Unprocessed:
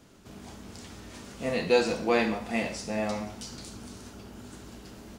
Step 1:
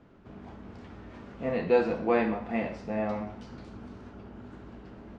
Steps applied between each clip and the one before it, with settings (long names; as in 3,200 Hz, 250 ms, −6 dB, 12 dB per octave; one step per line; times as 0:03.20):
low-pass filter 1,800 Hz 12 dB per octave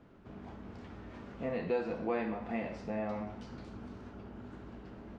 downward compressor 2 to 1, threshold −33 dBFS, peak gain reduction 9 dB
level −2 dB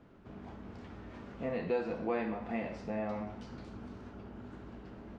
no processing that can be heard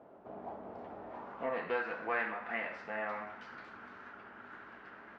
band-pass filter sweep 680 Hz → 1,600 Hz, 0:01.00–0:01.85
highs frequency-modulated by the lows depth 0.12 ms
level +12 dB